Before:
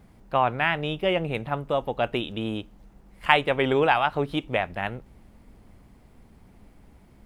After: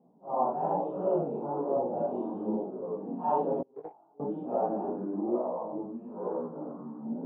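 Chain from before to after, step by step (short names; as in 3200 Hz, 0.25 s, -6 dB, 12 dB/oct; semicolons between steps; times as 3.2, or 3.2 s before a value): phase scrambler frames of 0.2 s; echoes that change speed 0.2 s, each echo -5 st, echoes 3, each echo -6 dB; elliptic band-pass 180–900 Hz, stop band 40 dB; air absorption 77 m; 3.61–4.2 gate -16 dBFS, range -33 dB; chorus 1.1 Hz, delay 16 ms, depth 5.3 ms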